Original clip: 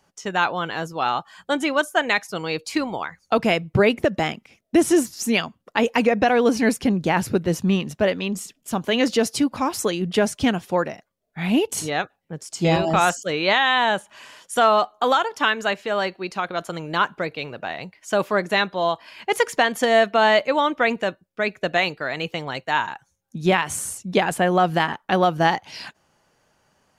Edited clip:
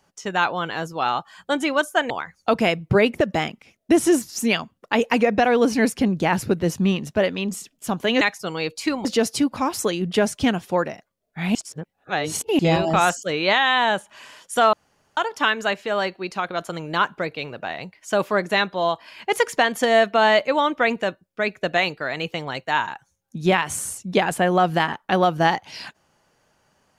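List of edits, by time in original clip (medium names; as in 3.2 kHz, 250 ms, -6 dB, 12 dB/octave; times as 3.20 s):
2.10–2.94 s: move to 9.05 s
11.55–12.59 s: reverse
14.73–15.17 s: room tone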